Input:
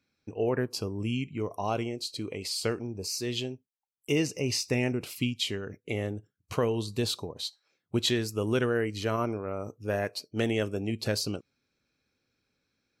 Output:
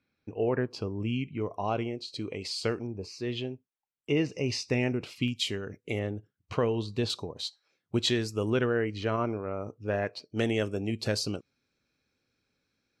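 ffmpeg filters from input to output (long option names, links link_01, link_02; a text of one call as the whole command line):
ffmpeg -i in.wav -af "asetnsamples=nb_out_samples=441:pad=0,asendcmd='2.08 lowpass f 5800;2.87 lowpass f 2800;4.32 lowpass f 4800;5.28 lowpass f 11000;5.99 lowpass f 4100;7.1 lowpass f 7500;8.5 lowpass f 3700;10.3 lowpass f 9100',lowpass=3500" out.wav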